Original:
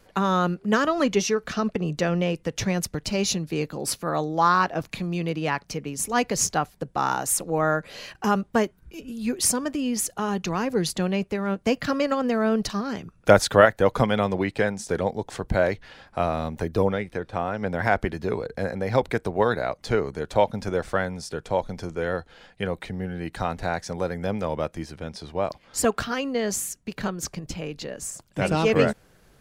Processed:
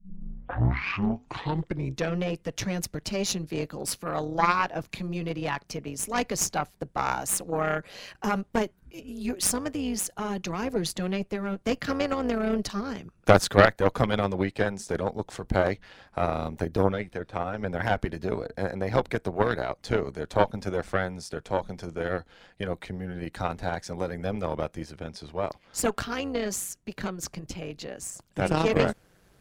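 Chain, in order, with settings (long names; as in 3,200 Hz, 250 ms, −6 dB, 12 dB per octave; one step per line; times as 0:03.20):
turntable start at the beginning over 2.15 s
amplitude modulation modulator 190 Hz, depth 40%
harmonic generator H 4 −12 dB, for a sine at −2 dBFS
level −1 dB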